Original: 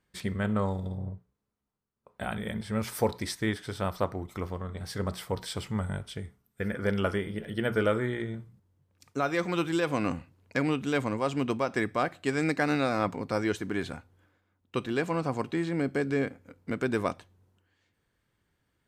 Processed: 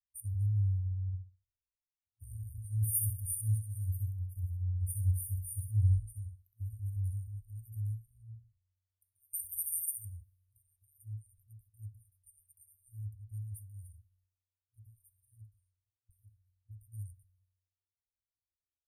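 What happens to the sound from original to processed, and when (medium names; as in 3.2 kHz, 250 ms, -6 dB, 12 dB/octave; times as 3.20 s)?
1.07–6.96 s: feedback delay 65 ms, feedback 31%, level -5 dB
9.33–10.05 s: spectrum-flattening compressor 4:1
15.31–16.09 s: studio fade out
whole clip: peaking EQ 75 Hz -4 dB 0.93 oct; FFT band-reject 110–8800 Hz; three bands expanded up and down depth 70%; trim +4 dB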